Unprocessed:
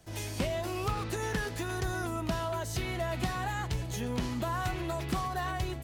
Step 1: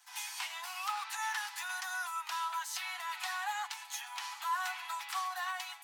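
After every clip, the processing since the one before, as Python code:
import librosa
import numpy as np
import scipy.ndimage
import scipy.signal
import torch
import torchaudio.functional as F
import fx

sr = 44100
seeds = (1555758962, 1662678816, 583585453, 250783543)

y = scipy.signal.sosfilt(scipy.signal.butter(16, 790.0, 'highpass', fs=sr, output='sos'), x)
y = y + 0.46 * np.pad(y, (int(6.9 * sr / 1000.0), 0))[:len(y)]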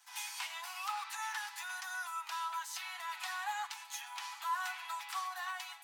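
y = fx.rider(x, sr, range_db=10, speed_s=2.0)
y = fx.room_shoebox(y, sr, seeds[0], volume_m3=1900.0, walls='furnished', distance_m=0.69)
y = y * librosa.db_to_amplitude(-3.5)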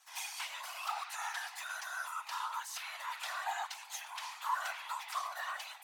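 y = fx.whisperise(x, sr, seeds[1])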